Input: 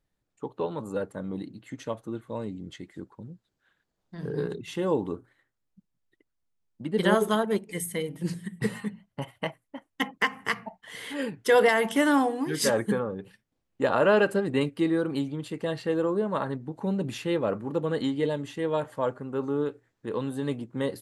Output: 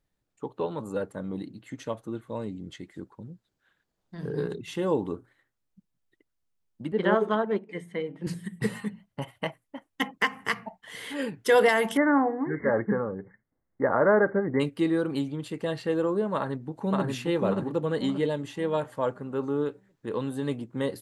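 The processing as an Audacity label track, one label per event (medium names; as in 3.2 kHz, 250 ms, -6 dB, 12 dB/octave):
6.920000	8.270000	band-pass 200–2200 Hz
11.970000	14.600000	brick-wall FIR low-pass 2.2 kHz
16.340000	17.050000	echo throw 580 ms, feedback 35%, level -1 dB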